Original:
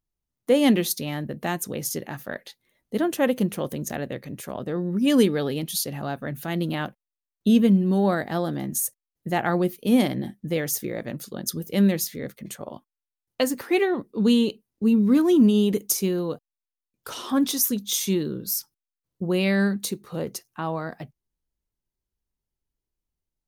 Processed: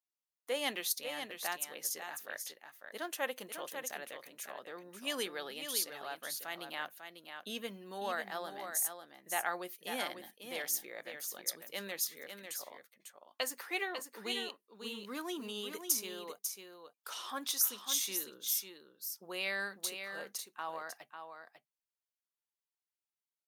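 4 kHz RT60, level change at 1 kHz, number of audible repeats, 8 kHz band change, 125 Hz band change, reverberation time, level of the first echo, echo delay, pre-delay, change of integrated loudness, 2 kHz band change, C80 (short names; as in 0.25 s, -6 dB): none, -9.5 dB, 1, -6.5 dB, -33.0 dB, none, -7.5 dB, 0.547 s, none, -14.0 dB, -6.5 dB, none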